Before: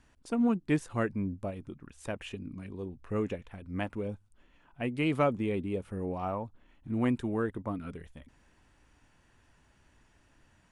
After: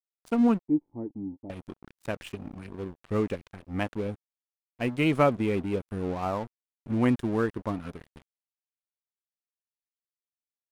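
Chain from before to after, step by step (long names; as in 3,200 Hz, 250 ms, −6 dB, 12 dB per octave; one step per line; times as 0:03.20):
dead-zone distortion −46 dBFS
0:00.65–0:01.50: formant resonators in series u
level +5.5 dB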